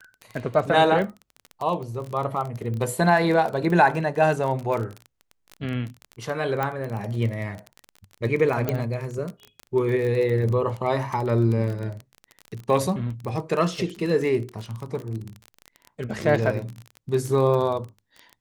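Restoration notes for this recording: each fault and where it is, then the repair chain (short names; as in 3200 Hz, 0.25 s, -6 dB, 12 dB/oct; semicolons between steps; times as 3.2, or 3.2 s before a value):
crackle 25/s -28 dBFS
6.63 pop -13 dBFS
8.69 pop -11 dBFS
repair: de-click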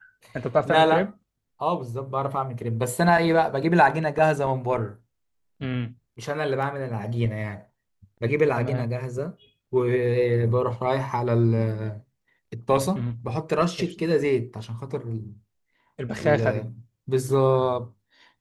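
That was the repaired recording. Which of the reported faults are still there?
6.63 pop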